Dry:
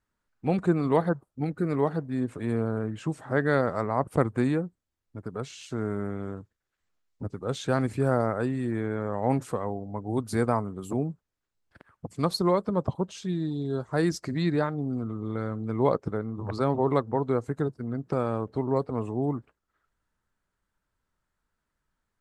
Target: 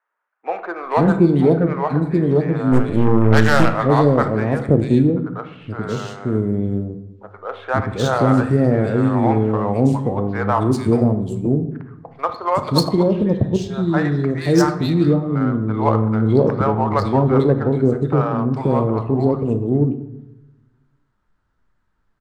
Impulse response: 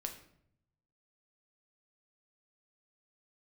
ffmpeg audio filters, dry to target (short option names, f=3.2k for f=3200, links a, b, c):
-filter_complex "[0:a]acrossover=split=570|2500[a][b][c];[c]adelay=440[d];[a]adelay=530[e];[e][b][d]amix=inputs=3:normalize=0,asplit=3[f][g][h];[f]afade=t=out:st=2.71:d=0.02[i];[g]aeval=exprs='0.158*(cos(1*acos(clip(val(0)/0.158,-1,1)))-cos(1*PI/2))+0.00794*(cos(5*acos(clip(val(0)/0.158,-1,1)))-cos(5*PI/2))+0.0282*(cos(6*acos(clip(val(0)/0.158,-1,1)))-cos(6*PI/2))':c=same,afade=t=in:st=2.71:d=0.02,afade=t=out:st=3.74:d=0.02[j];[h]afade=t=in:st=3.74:d=0.02[k];[i][j][k]amix=inputs=3:normalize=0,asplit=2[l][m];[1:a]atrim=start_sample=2205,asetrate=31311,aresample=44100,highshelf=f=7.1k:g=7.5[n];[m][n]afir=irnorm=-1:irlink=0,volume=4.5dB[o];[l][o]amix=inputs=2:normalize=0,adynamicsmooth=sensitivity=3:basefreq=3.4k,volume=3dB"